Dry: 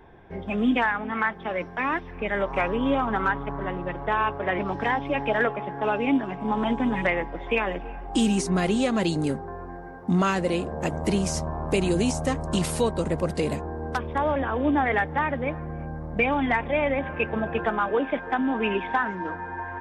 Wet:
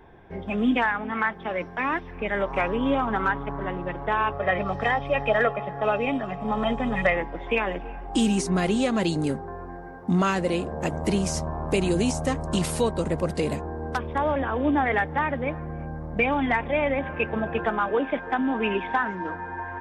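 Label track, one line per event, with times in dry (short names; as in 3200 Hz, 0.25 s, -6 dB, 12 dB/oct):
4.320000	7.160000	comb 1.6 ms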